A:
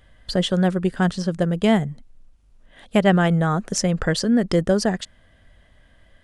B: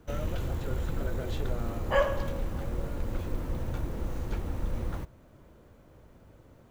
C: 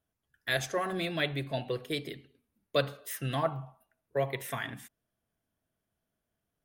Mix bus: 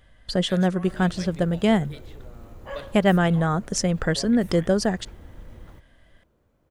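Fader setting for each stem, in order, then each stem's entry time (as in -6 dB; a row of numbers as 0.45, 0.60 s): -2.0, -11.0, -12.0 dB; 0.00, 0.75, 0.00 s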